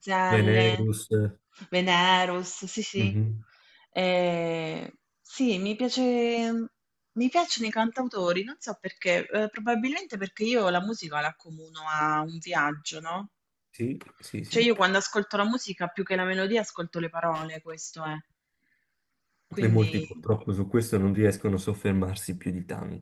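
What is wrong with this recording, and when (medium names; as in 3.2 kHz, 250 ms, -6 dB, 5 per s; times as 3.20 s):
17.34–17.86 s: clipped -29.5 dBFS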